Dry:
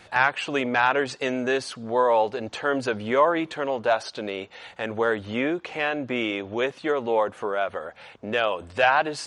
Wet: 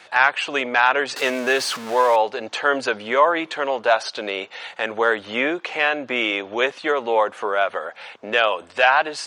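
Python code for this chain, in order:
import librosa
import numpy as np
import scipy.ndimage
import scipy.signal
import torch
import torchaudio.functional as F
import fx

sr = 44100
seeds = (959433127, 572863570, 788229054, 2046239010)

p1 = fx.zero_step(x, sr, step_db=-30.0, at=(1.16, 2.16))
p2 = fx.weighting(p1, sr, curve='A')
p3 = fx.rider(p2, sr, range_db=4, speed_s=0.5)
y = p2 + (p3 * librosa.db_to_amplitude(-1.5))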